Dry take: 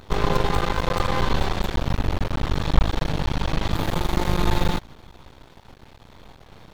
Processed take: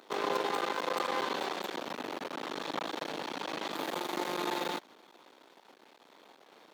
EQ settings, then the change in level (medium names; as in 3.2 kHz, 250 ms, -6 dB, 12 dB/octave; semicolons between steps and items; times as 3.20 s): high-pass 280 Hz 24 dB/octave; -7.0 dB